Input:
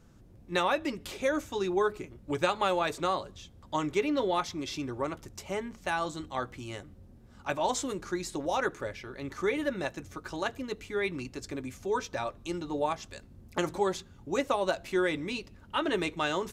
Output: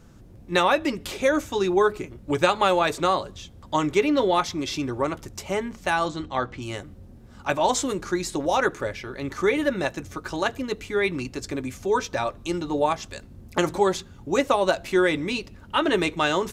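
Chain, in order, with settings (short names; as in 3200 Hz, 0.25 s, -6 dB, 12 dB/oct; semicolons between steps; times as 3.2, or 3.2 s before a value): 6.08–6.62 LPF 4900 Hz 12 dB/oct; gain +7.5 dB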